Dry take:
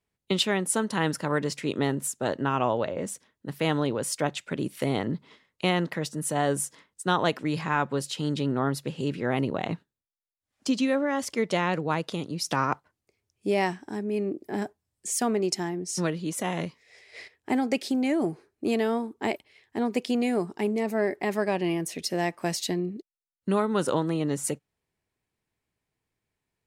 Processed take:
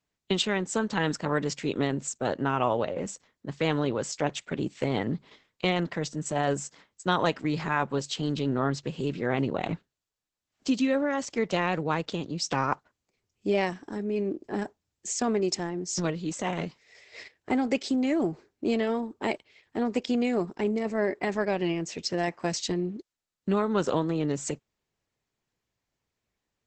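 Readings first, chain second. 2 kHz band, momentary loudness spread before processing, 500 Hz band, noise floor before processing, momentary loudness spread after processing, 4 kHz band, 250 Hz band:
-1.0 dB, 9 LU, -0.5 dB, under -85 dBFS, 9 LU, -1.0 dB, -0.5 dB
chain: Opus 10 kbps 48000 Hz

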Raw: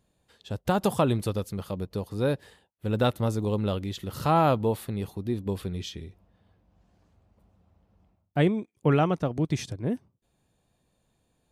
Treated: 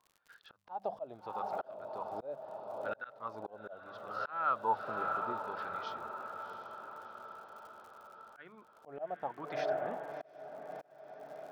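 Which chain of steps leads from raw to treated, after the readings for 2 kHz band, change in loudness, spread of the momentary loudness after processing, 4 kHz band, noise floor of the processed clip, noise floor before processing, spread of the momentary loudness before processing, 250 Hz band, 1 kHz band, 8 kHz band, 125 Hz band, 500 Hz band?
-5.5 dB, -12.0 dB, 19 LU, -16.5 dB, -65 dBFS, -73 dBFS, 11 LU, -23.5 dB, -5.5 dB, under -20 dB, -31.0 dB, -11.0 dB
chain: resonant high shelf 6300 Hz -7 dB, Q 3; notches 50/100/150/200 Hz; wah 0.75 Hz 640–1500 Hz, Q 9; diffused feedback echo 0.7 s, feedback 61%, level -11.5 dB; crackle 100/s -62 dBFS; auto swell 0.568 s; gain +12 dB

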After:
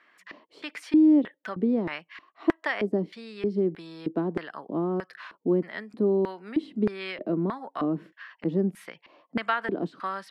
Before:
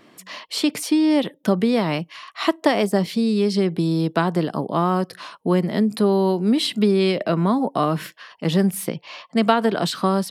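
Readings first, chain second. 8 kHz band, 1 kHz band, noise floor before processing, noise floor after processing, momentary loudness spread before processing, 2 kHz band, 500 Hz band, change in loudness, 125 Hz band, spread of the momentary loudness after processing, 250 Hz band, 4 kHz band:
under -20 dB, -11.0 dB, -54 dBFS, -69 dBFS, 10 LU, -4.5 dB, -7.5 dB, -7.0 dB, -11.5 dB, 12 LU, -6.0 dB, -16.5 dB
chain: LFO band-pass square 1.6 Hz 310–1700 Hz

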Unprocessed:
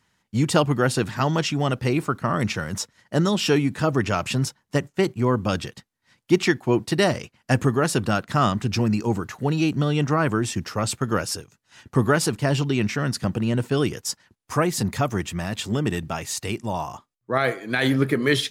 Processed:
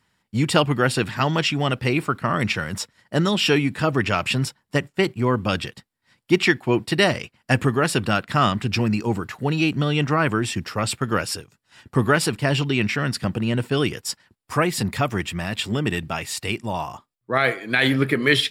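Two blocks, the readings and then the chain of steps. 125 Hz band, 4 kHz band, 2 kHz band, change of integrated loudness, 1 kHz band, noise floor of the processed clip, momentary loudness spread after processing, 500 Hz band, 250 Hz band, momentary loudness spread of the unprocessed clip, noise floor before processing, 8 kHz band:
0.0 dB, +4.5 dB, +5.0 dB, +1.5 dB, +1.5 dB, -74 dBFS, 8 LU, +0.5 dB, 0.0 dB, 8 LU, -74 dBFS, -1.0 dB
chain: notch 6300 Hz, Q 6; dynamic EQ 2500 Hz, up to +7 dB, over -41 dBFS, Q 1

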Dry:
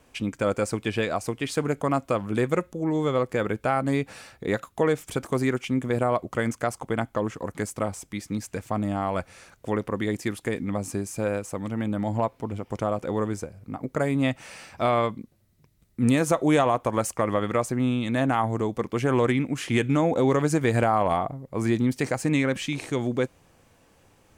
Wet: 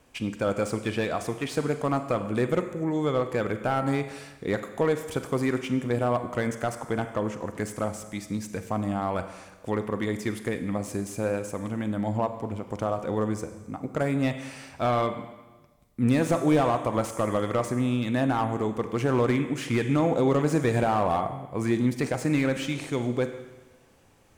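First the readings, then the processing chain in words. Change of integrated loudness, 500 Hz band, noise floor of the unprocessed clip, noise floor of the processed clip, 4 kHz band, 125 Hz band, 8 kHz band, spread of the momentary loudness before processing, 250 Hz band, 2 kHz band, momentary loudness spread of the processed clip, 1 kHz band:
-1.5 dB, -1.0 dB, -62 dBFS, -55 dBFS, -2.0 dB, -1.0 dB, -3.5 dB, 10 LU, -1.0 dB, -2.5 dB, 10 LU, -1.5 dB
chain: Schroeder reverb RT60 1.2 s, combs from 33 ms, DRR 9.5 dB; slew limiter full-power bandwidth 120 Hz; gain -1.5 dB

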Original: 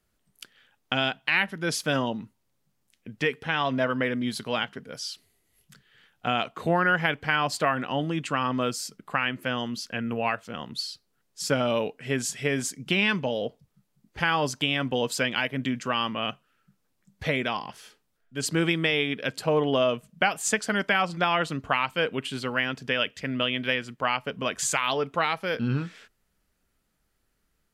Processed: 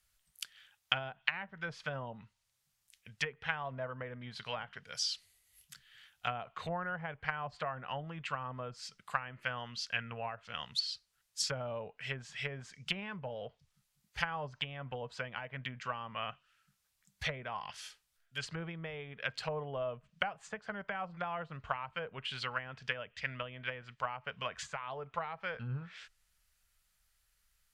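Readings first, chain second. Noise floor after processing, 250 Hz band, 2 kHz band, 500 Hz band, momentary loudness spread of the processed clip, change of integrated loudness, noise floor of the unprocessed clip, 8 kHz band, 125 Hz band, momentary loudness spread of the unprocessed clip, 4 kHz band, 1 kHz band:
-80 dBFS, -19.5 dB, -12.0 dB, -14.0 dB, 10 LU, -12.5 dB, -74 dBFS, -14.0 dB, -11.0 dB, 9 LU, -10.5 dB, -11.5 dB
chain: treble ducked by the level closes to 660 Hz, closed at -22.5 dBFS; passive tone stack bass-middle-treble 10-0-10; gain +4 dB

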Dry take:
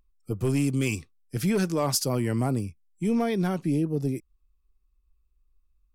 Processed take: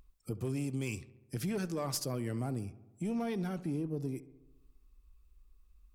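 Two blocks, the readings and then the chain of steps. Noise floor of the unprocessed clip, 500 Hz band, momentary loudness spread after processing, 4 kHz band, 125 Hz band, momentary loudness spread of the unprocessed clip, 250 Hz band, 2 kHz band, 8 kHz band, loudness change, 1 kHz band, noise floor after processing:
-68 dBFS, -10.0 dB, 9 LU, -10.0 dB, -9.5 dB, 10 LU, -10.0 dB, -10.5 dB, -10.5 dB, -10.0 dB, -10.5 dB, -66 dBFS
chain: one diode to ground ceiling -18 dBFS; compressor 2:1, threshold -54 dBFS, peak gain reduction 17 dB; darkening echo 69 ms, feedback 67%, low-pass 2500 Hz, level -17.5 dB; gain +7 dB

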